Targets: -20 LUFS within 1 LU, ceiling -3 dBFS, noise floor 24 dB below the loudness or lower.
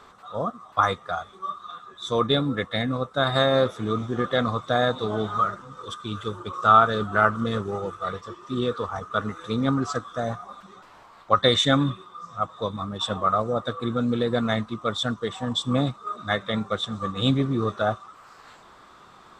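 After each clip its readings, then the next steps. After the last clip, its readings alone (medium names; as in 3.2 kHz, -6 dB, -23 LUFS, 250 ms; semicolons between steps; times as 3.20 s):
loudness -25.0 LUFS; peak level -4.0 dBFS; loudness target -20.0 LUFS
-> trim +5 dB; peak limiter -3 dBFS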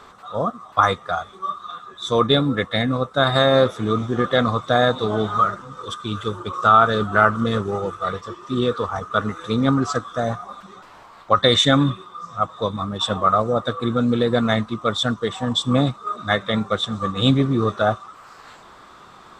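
loudness -20.5 LUFS; peak level -3.0 dBFS; noise floor -46 dBFS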